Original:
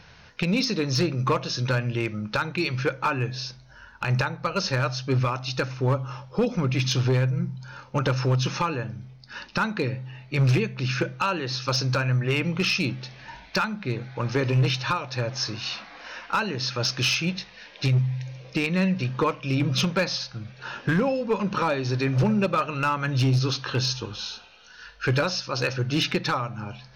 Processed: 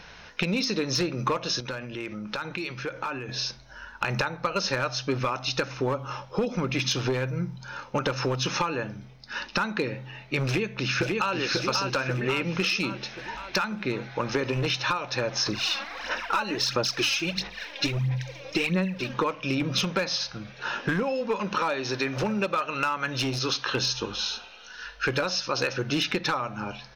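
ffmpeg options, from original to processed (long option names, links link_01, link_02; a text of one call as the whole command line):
ffmpeg -i in.wav -filter_complex "[0:a]asettb=1/sr,asplit=3[link_01][link_02][link_03];[link_01]atrim=end=1.604[link_04];[link_02]atrim=start=1.6:end=3.29,asetpts=PTS-STARTPTS,afade=type=in:duration=0.004:curve=qsin,afade=type=out:start_time=1.686:duration=0.004:curve=qsin,acompressor=threshold=-32dB:ratio=8:attack=3.2:release=140:knee=1:detection=peak[link_05];[link_03]atrim=start=3.286[link_06];[link_04][link_05]acrossfade=duration=0.004:curve1=hsin:curve2=qsin[link_07];[link_07][link_06]acrossfade=duration=0.004:curve1=qsin:curve2=hsin,asplit=2[link_08][link_09];[link_09]afade=type=in:start_time=10.46:duration=0.01,afade=type=out:start_time=11.35:duration=0.01,aecho=0:1:540|1080|1620|2160|2700|3240|3780:0.707946|0.353973|0.176986|0.0884932|0.0442466|0.0221233|0.0110617[link_10];[link_08][link_10]amix=inputs=2:normalize=0,asettb=1/sr,asplit=3[link_11][link_12][link_13];[link_11]atrim=end=15.464[link_14];[link_12]atrim=start=15.46:end=19.14,asetpts=PTS-STARTPTS,afade=type=in:duration=0.004:curve=qsin,afade=type=out:start_time=3.676:duration=0.004:curve=qsin,aphaser=in_gain=1:out_gain=1:delay=3.7:decay=0.64:speed=1.5:type=sinusoidal[link_15];[link_13]atrim=start=19.136[link_16];[link_14][link_15]acrossfade=duration=0.004:curve1=hsin:curve2=qsin[link_17];[link_17][link_16]acrossfade=duration=0.004:curve1=qsin:curve2=hsin,asettb=1/sr,asplit=3[link_18][link_19][link_20];[link_18]atrim=end=21.034[link_21];[link_19]atrim=start=21.03:end=23.75,asetpts=PTS-STARTPTS,afade=type=in:duration=0.004:curve=qsin,afade=type=out:start_time=2.716:duration=0.004:curve=qsin,lowshelf=frequency=460:gain=-6.5[link_22];[link_20]atrim=start=23.746[link_23];[link_21][link_22]acrossfade=duration=0.004:curve1=hsin:curve2=qsin[link_24];[link_24][link_23]acrossfade=duration=0.004:curve1=qsin:curve2=hsin,equalizer=frequency=110:width_type=o:width=1:gain=-12.5,bandreject=frequency=4500:width=16,acompressor=threshold=-28dB:ratio=6,volume=5dB" out.wav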